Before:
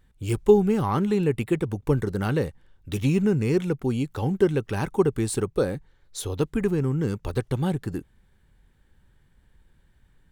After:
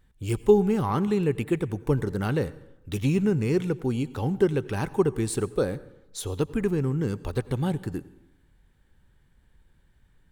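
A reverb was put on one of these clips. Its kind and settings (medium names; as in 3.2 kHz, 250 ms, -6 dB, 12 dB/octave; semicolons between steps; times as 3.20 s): plate-style reverb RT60 0.88 s, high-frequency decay 0.65×, pre-delay 75 ms, DRR 18.5 dB; trim -1.5 dB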